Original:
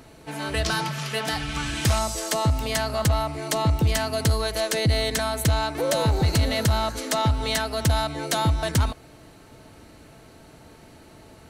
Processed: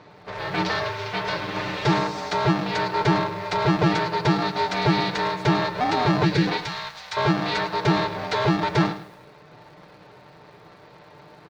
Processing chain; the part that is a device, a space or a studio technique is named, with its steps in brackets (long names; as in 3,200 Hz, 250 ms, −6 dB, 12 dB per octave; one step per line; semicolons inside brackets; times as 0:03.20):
ring modulator pedal into a guitar cabinet (ring modulator with a square carrier 250 Hz; loudspeaker in its box 91–4,400 Hz, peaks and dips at 290 Hz −5 dB, 830 Hz +3 dB, 3,000 Hz −6 dB)
0:06.25–0:06.47: gain on a spectral selection 580–1,400 Hz −12 dB
0:06.57–0:07.17: guitar amp tone stack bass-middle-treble 10-0-10
comb filter 6.7 ms, depth 53%
feedback echo at a low word length 106 ms, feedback 35%, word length 8 bits, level −13 dB